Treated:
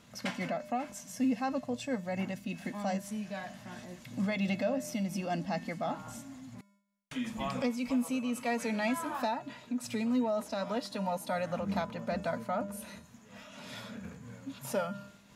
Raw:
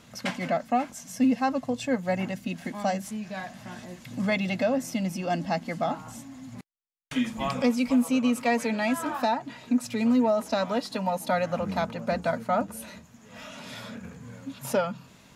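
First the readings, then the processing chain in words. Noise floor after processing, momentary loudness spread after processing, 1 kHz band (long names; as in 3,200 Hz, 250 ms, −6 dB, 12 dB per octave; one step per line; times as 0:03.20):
−59 dBFS, 15 LU, −7.5 dB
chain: in parallel at +1.5 dB: brickwall limiter −23.5 dBFS, peak gain reduction 9 dB
on the sum: tuned comb filter 200 Hz, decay 0.85 s, harmonics odd, mix 70%
amplitude modulation by smooth noise, depth 60%
level +1.5 dB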